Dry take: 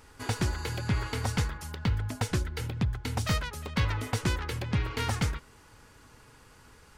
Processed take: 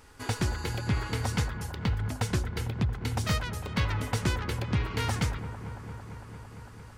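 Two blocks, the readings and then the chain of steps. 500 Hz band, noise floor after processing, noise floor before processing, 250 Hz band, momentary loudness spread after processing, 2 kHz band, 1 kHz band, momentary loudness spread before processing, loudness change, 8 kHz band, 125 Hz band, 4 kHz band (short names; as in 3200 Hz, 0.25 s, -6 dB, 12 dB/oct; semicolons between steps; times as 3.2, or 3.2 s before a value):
+1.0 dB, -47 dBFS, -56 dBFS, +1.0 dB, 13 LU, +0.5 dB, +0.5 dB, 4 LU, +0.5 dB, 0.0 dB, +1.0 dB, 0.0 dB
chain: dark delay 0.226 s, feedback 82%, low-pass 1500 Hz, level -12 dB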